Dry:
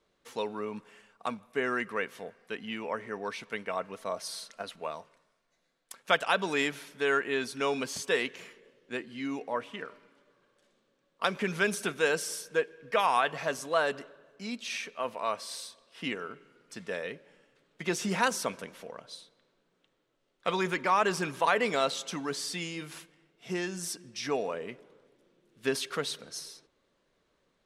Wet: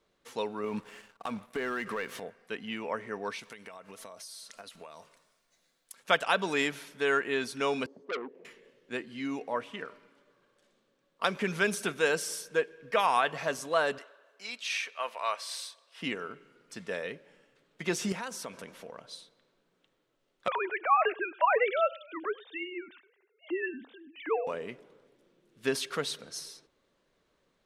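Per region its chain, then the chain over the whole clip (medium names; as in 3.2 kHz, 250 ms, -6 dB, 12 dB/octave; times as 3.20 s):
0.64–2.20 s: compression, threshold -36 dBFS + waveshaping leveller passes 2
3.39–6.04 s: treble shelf 3.7 kHz +11 dB + compression 16:1, threshold -42 dBFS
7.86–8.45 s: zero-crossing glitches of -30.5 dBFS + Butterworth band-pass 370 Hz, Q 1.1 + transformer saturation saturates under 2.1 kHz
13.98–16.01 s: high-pass 650 Hz + dynamic bell 2.5 kHz, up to +4 dB, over -49 dBFS, Q 0.77
18.12–19.04 s: compression 2.5:1, threshold -39 dBFS + tape noise reduction on one side only decoder only
20.48–24.47 s: formants replaced by sine waves + delay 101 ms -21.5 dB
whole clip: none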